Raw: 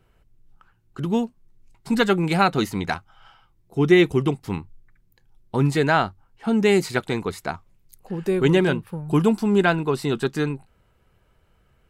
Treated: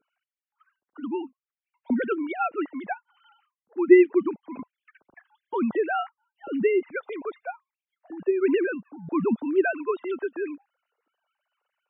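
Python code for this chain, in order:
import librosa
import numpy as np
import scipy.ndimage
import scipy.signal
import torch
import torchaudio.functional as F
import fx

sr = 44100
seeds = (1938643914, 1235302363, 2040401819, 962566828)

y = fx.sine_speech(x, sr)
y = fx.spec_topn(y, sr, count=64)
y = fx.band_squash(y, sr, depth_pct=70, at=(4.59, 5.95))
y = F.gain(torch.from_numpy(y), -4.0).numpy()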